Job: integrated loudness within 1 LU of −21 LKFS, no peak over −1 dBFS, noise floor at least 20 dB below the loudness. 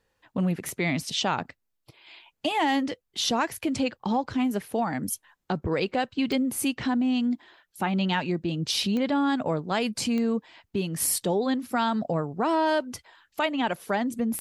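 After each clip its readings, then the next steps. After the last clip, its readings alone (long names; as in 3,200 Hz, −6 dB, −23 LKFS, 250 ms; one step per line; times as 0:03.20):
number of clicks 5; integrated loudness −27.0 LKFS; sample peak −13.0 dBFS; target loudness −21.0 LKFS
→ click removal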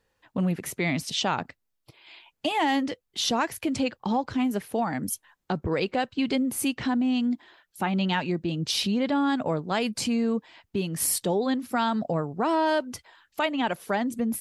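number of clicks 0; integrated loudness −27.0 LKFS; sample peak −13.0 dBFS; target loudness −21.0 LKFS
→ level +6 dB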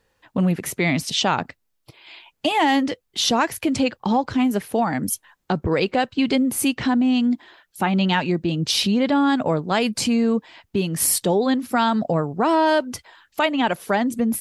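integrated loudness −21.0 LKFS; sample peak −7.0 dBFS; background noise floor −72 dBFS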